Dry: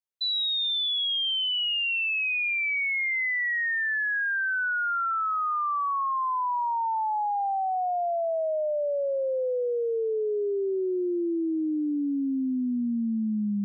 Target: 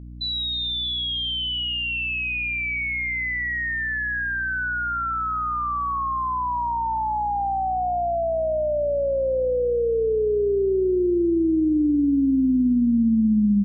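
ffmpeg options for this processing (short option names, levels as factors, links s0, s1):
-filter_complex "[0:a]lowshelf=f=480:g=10.5,aeval=exprs='val(0)+0.0141*(sin(2*PI*60*n/s)+sin(2*PI*2*60*n/s)/2+sin(2*PI*3*60*n/s)/3+sin(2*PI*4*60*n/s)/4+sin(2*PI*5*60*n/s)/5)':c=same,asplit=2[s0][s1];[s1]aecho=0:1:314|628|942:0.112|0.037|0.0122[s2];[s0][s2]amix=inputs=2:normalize=0"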